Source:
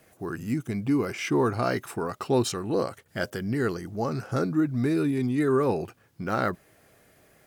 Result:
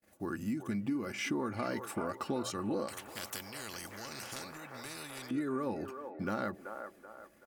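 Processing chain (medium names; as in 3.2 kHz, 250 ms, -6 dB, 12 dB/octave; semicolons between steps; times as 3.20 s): gate -58 dBFS, range -32 dB; peaking EQ 210 Hz +6.5 dB 0.22 oct; hum notches 60/120 Hz; comb 3.5 ms, depth 42%; compression, threshold -28 dBFS, peak gain reduction 11 dB; feedback echo behind a band-pass 382 ms, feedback 40%, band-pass 820 Hz, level -6 dB; 2.88–5.31 s: spectrum-flattening compressor 4:1; trim -4 dB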